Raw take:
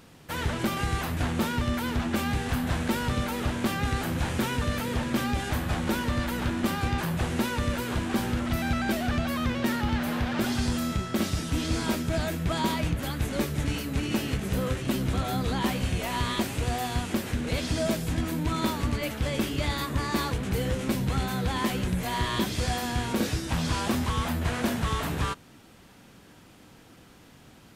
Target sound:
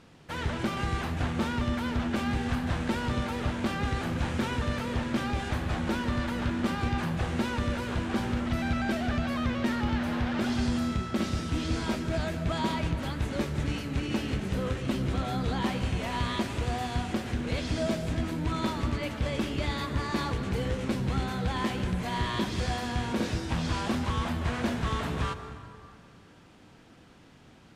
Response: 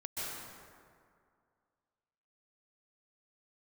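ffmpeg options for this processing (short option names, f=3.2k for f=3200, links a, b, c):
-filter_complex "[0:a]adynamicsmooth=sensitivity=0.5:basefreq=7.6k,asplit=2[a][b];[1:a]atrim=start_sample=2205[c];[b][c]afir=irnorm=-1:irlink=0,volume=-11dB[d];[a][d]amix=inputs=2:normalize=0,volume=-3.5dB"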